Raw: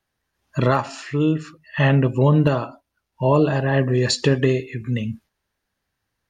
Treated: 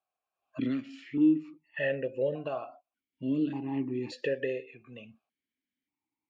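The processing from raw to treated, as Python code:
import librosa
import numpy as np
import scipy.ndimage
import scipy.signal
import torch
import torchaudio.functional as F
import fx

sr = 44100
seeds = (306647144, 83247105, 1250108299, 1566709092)

y = fx.dynamic_eq(x, sr, hz=1000.0, q=0.94, threshold_db=-31.0, ratio=4.0, max_db=-5)
y = fx.vowel_held(y, sr, hz=1.7)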